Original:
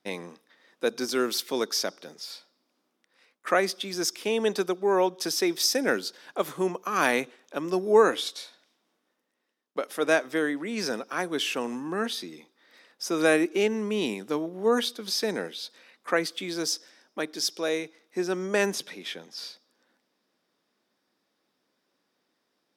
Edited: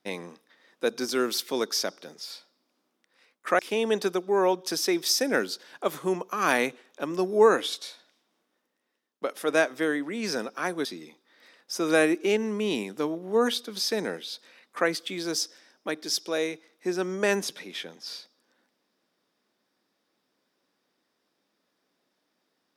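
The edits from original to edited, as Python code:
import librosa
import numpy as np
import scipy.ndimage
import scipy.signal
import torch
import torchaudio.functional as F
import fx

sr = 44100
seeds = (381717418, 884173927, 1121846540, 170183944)

y = fx.edit(x, sr, fx.cut(start_s=3.59, length_s=0.54),
    fx.cut(start_s=11.39, length_s=0.77), tone=tone)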